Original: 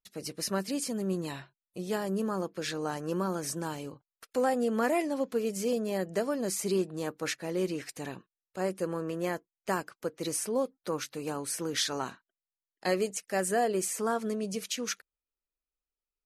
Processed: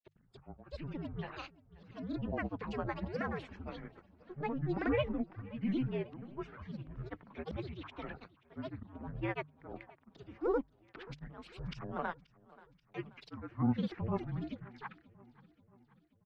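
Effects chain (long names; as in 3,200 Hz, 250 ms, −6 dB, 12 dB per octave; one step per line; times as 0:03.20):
volume swells 271 ms
single-sideband voice off tune −250 Hz 360–2,800 Hz
granular cloud, pitch spread up and down by 12 semitones
mains-hum notches 50/100/150 Hz
on a send: repeating echo 532 ms, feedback 57%, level −22 dB
on the sum: level −1 dB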